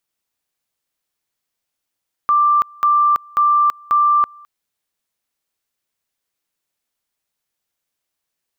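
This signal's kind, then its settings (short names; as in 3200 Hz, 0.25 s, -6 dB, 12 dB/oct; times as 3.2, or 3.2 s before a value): two-level tone 1180 Hz -10.5 dBFS, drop 28 dB, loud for 0.33 s, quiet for 0.21 s, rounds 4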